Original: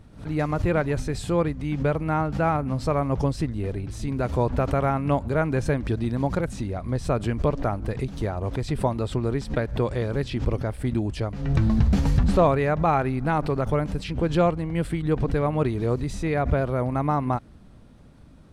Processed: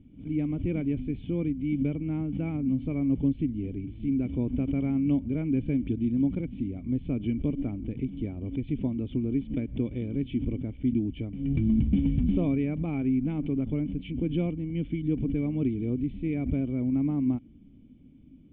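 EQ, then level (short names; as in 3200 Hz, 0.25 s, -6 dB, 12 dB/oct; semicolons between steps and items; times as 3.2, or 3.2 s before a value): vocal tract filter i; +5.0 dB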